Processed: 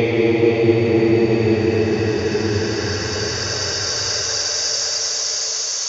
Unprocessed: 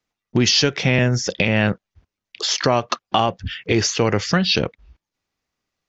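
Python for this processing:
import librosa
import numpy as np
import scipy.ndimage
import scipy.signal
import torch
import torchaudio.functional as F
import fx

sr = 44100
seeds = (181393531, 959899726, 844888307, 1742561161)

y = fx.band_shelf(x, sr, hz=750.0, db=9.5, octaves=1.7)
y = fx.paulstretch(y, sr, seeds[0], factor=44.0, window_s=0.1, from_s=3.75)
y = fx.echo_stepped(y, sr, ms=441, hz=480.0, octaves=1.4, feedback_pct=70, wet_db=-5.5)
y = y * 10.0 ** (-2.0 / 20.0)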